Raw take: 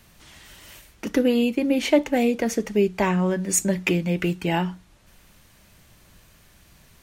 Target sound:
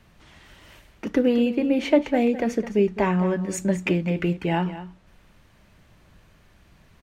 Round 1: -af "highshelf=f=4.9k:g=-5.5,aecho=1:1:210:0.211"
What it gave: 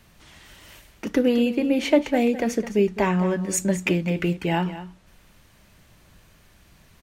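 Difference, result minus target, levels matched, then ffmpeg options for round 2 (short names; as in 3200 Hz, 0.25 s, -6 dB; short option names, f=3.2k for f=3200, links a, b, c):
8000 Hz band +7.0 dB
-af "highshelf=f=4.9k:g=-16.5,aecho=1:1:210:0.211"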